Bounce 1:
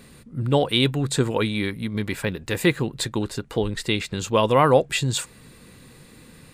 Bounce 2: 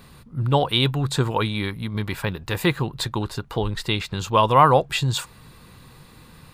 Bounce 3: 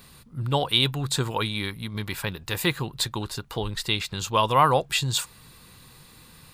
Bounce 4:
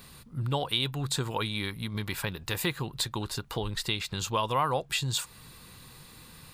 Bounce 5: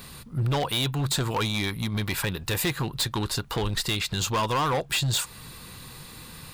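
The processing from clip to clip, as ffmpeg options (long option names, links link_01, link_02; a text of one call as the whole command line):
ffmpeg -i in.wav -af "equalizer=frequency=250:width_type=o:width=1:gain=-7,equalizer=frequency=500:width_type=o:width=1:gain=-6,equalizer=frequency=1000:width_type=o:width=1:gain=5,equalizer=frequency=2000:width_type=o:width=1:gain=-6,equalizer=frequency=8000:width_type=o:width=1:gain=-9,volume=4dB" out.wav
ffmpeg -i in.wav -af "highshelf=frequency=2700:gain=10,volume=-5.5dB" out.wav
ffmpeg -i in.wav -af "acompressor=threshold=-30dB:ratio=2" out.wav
ffmpeg -i in.wav -af "asoftclip=type=hard:threshold=-28.5dB,volume=7dB" out.wav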